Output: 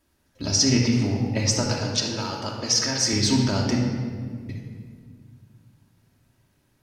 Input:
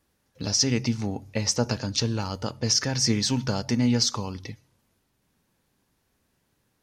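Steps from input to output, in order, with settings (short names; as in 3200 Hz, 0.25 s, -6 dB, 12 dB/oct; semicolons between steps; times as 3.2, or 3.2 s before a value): 1.59–3.13 HPF 490 Hz 6 dB/oct; 3.78–4.49 room tone; shoebox room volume 3200 m³, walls mixed, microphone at 2.8 m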